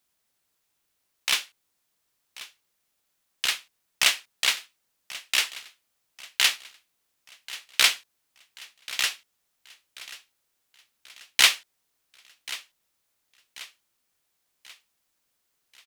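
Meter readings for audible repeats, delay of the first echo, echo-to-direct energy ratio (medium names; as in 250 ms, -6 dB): 3, 1086 ms, -16.5 dB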